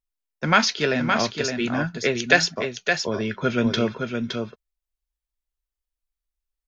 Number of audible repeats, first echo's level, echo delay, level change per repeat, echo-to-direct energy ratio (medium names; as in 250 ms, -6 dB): 1, -5.5 dB, 566 ms, no regular repeats, -5.5 dB